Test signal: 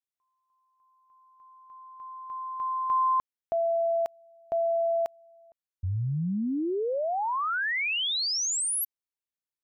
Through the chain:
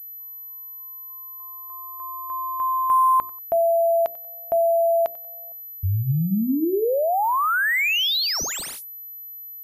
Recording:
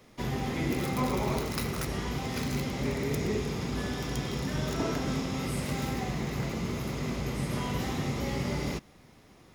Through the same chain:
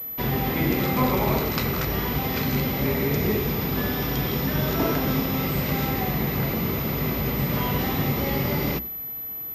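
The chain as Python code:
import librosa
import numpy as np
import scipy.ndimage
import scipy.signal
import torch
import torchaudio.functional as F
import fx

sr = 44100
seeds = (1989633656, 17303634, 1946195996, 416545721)

y = fx.hum_notches(x, sr, base_hz=60, count=7)
y = fx.echo_feedback(y, sr, ms=93, feedback_pct=33, wet_db=-21.0)
y = fx.pwm(y, sr, carrier_hz=12000.0)
y = F.gain(torch.from_numpy(y), 7.5).numpy()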